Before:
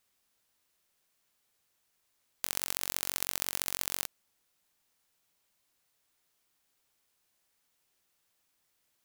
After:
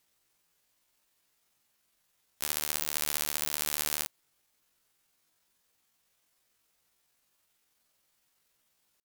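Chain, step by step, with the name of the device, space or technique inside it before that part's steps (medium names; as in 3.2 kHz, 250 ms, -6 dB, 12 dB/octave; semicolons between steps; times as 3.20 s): chipmunk voice (pitch shift +8.5 st); trim +5 dB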